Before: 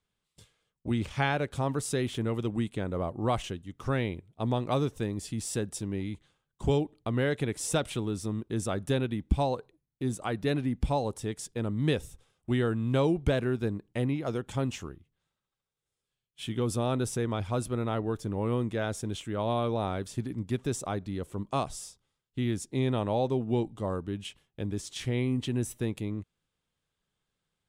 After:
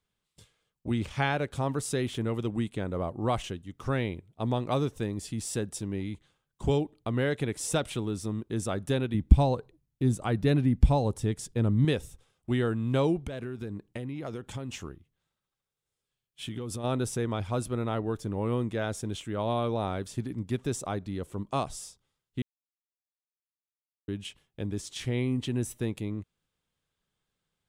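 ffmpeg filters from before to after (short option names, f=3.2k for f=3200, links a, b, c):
-filter_complex "[0:a]asettb=1/sr,asplit=3[a][b][c];[a]atrim=end=9.144[d];[b]atrim=start=9.14:end=11.85,asetpts=PTS-STARTPTS,afade=t=in:d=0.004:c=qsin,afade=t=out:st=2.706:d=0.004:c=qsin,lowshelf=f=210:g=10.5[e];[c]atrim=start=11.846[f];[d][e]acrossfade=d=0.004:c1=hsin:c2=qsin[g];[g][f]acrossfade=d=0.004:c1=qsin:c2=hsin,asplit=3[h][i][j];[h]afade=t=out:st=13.24:d=0.02[k];[i]acompressor=threshold=-31dB:ratio=16:attack=3.2:release=140:knee=1:detection=peak,afade=t=in:st=13.24:d=0.02,afade=t=out:st=16.83:d=0.02[l];[j]afade=t=in:st=16.83:d=0.02[m];[k][l][m]amix=inputs=3:normalize=0,asplit=3[n][o][p];[n]atrim=end=22.42,asetpts=PTS-STARTPTS,afade=t=out:st=22.416:d=0.004:c=hsin[q];[o]atrim=start=22.42:end=24.08,asetpts=PTS-STARTPTS,volume=0[r];[p]atrim=start=24.08,asetpts=PTS-STARTPTS,afade=t=in:d=0.004:c=hsin[s];[q][r][s]concat=n=3:v=0:a=1"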